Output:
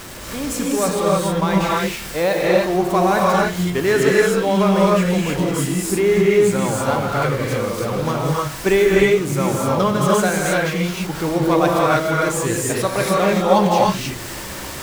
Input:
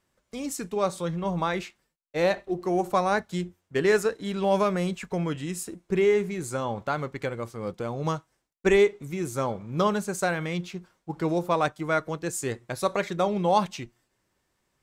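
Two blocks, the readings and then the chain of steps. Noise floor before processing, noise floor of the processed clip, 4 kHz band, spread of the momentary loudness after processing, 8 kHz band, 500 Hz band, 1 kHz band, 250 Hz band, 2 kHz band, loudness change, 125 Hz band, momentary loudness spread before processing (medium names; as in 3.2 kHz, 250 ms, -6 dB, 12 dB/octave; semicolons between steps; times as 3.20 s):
-76 dBFS, -31 dBFS, +11.5 dB, 7 LU, +12.5 dB, +9.0 dB, +9.0 dB, +10.5 dB, +10.0 dB, +9.5 dB, +11.0 dB, 11 LU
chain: jump at every zero crossing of -32.5 dBFS; gated-style reverb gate 340 ms rising, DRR -4 dB; trim +3 dB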